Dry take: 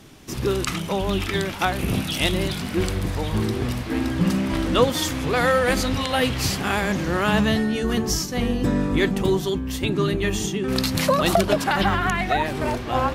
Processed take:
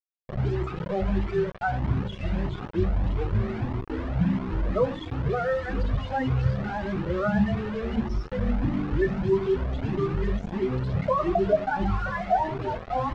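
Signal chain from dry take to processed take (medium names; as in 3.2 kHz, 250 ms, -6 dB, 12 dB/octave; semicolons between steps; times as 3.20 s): reverb removal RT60 1.2 s; hum notches 60/120/180/240/300 Hz; reverse; upward compressor, threshold -24 dBFS; reverse; loudest bins only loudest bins 8; delay 975 ms -18 dB; wow and flutter 26 cents; on a send at -7 dB: reverberation RT60 0.60 s, pre-delay 4 ms; on the sum: bit crusher 5-bit; tape spacing loss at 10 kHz 40 dB; Shepard-style flanger rising 1.6 Hz; trim +4.5 dB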